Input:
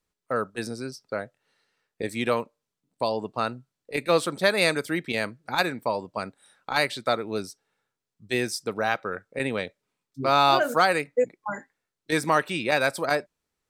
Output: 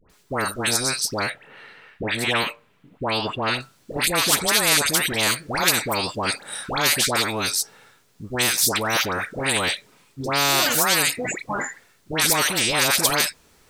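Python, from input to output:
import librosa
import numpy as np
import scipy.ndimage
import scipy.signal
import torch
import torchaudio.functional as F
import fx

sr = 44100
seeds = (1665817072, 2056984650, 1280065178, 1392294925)

y = fx.high_shelf_res(x, sr, hz=3800.0, db=-13.0, q=1.5, at=(1.2, 3.51))
y = fx.dispersion(y, sr, late='highs', ms=99.0, hz=1200.0)
y = fx.spectral_comp(y, sr, ratio=4.0)
y = y * 10.0 ** (5.5 / 20.0)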